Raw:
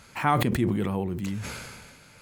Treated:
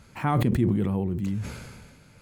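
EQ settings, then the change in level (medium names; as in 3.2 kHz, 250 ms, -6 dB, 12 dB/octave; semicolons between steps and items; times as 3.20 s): bass shelf 450 Hz +11 dB; -6.5 dB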